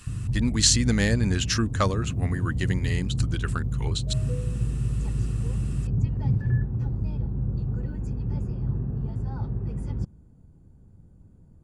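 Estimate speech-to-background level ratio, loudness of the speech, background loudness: 2.5 dB, -26.5 LUFS, -29.0 LUFS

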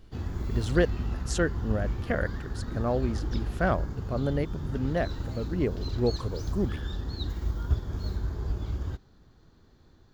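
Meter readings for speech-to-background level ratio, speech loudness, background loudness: 3.5 dB, -31.0 LUFS, -34.5 LUFS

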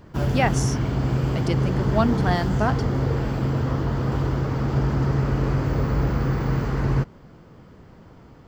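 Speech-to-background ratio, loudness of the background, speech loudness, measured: -3.0 dB, -23.5 LUFS, -26.5 LUFS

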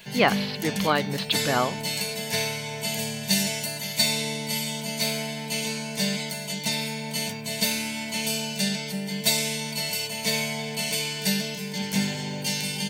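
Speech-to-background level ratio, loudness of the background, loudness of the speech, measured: 0.5 dB, -26.5 LUFS, -26.0 LUFS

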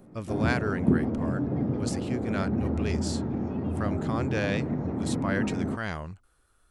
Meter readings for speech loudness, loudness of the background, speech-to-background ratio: -34.0 LUFS, -29.5 LUFS, -4.5 dB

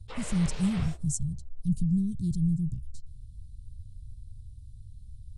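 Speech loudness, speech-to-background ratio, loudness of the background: -30.0 LUFS, 13.0 dB, -43.0 LUFS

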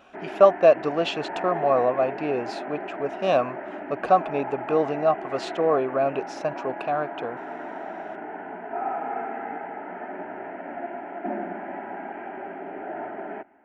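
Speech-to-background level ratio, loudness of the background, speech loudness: 10.5 dB, -34.5 LUFS, -24.0 LUFS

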